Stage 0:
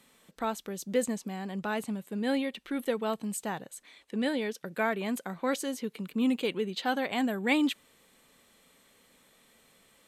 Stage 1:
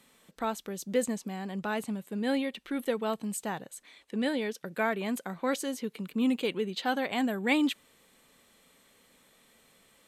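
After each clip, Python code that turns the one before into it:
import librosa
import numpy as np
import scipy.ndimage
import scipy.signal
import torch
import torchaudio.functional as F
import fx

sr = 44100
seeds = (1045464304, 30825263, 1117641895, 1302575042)

y = x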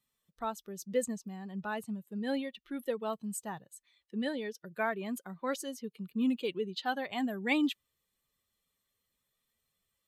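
y = fx.bin_expand(x, sr, power=1.5)
y = y * 10.0 ** (-1.5 / 20.0)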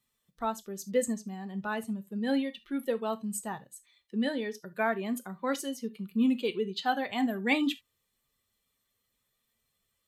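y = fx.rev_gated(x, sr, seeds[0], gate_ms=100, shape='falling', drr_db=10.0)
y = y * 10.0 ** (3.0 / 20.0)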